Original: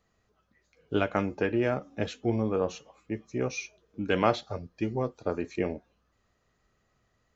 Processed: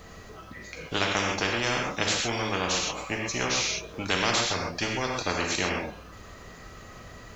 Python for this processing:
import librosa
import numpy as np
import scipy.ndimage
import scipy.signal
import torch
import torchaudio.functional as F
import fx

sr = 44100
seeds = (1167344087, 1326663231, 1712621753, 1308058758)

y = fx.rev_gated(x, sr, seeds[0], gate_ms=150, shape='flat', drr_db=2.0)
y = fx.spectral_comp(y, sr, ratio=4.0)